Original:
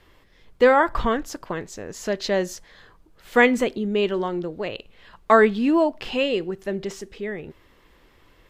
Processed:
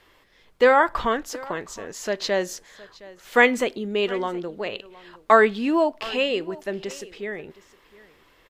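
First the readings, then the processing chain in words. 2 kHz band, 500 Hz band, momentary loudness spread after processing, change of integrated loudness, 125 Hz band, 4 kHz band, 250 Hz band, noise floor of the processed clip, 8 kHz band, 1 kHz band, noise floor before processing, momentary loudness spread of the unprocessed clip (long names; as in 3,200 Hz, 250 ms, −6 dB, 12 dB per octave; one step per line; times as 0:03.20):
+1.5 dB, −1.0 dB, 16 LU, −0.5 dB, −6.0 dB, +1.5 dB, −4.0 dB, −58 dBFS, +1.5 dB, +0.5 dB, −57 dBFS, 16 LU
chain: low-shelf EQ 260 Hz −11 dB
on a send: single-tap delay 715 ms −20.5 dB
on the sum: level +1.5 dB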